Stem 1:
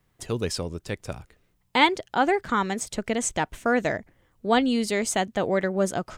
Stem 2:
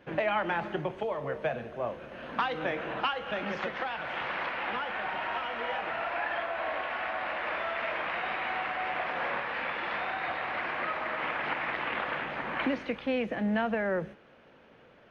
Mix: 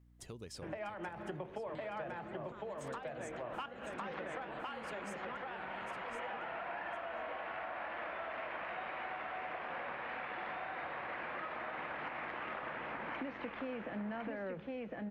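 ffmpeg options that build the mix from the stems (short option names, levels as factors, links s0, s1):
-filter_complex "[0:a]acompressor=threshold=0.0316:ratio=6,aeval=exprs='val(0)+0.00355*(sin(2*PI*60*n/s)+sin(2*PI*2*60*n/s)/2+sin(2*PI*3*60*n/s)/3+sin(2*PI*4*60*n/s)/4+sin(2*PI*5*60*n/s)/5)':c=same,volume=0.211,asplit=3[s0][s1][s2];[s1]volume=0.447[s3];[1:a]lowpass=f=2000:p=1,asoftclip=type=tanh:threshold=0.133,adelay=550,volume=1.41,asplit=2[s4][s5];[s5]volume=0.596[s6];[s2]apad=whole_len=690563[s7];[s4][s7]sidechaincompress=threshold=0.00316:ratio=8:attack=5.4:release=224[s8];[s3][s6]amix=inputs=2:normalize=0,aecho=0:1:1057:1[s9];[s0][s8][s9]amix=inputs=3:normalize=0,acompressor=threshold=0.00794:ratio=4"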